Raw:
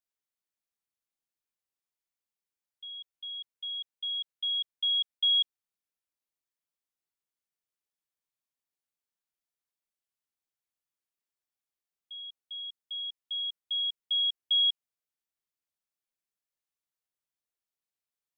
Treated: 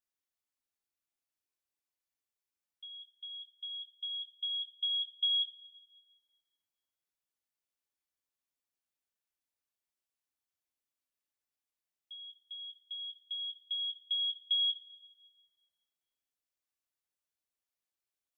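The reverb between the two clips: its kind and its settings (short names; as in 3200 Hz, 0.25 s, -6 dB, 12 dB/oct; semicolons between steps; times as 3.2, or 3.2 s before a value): two-slope reverb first 0.22 s, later 1.5 s, from -18 dB, DRR 4 dB; gain -3 dB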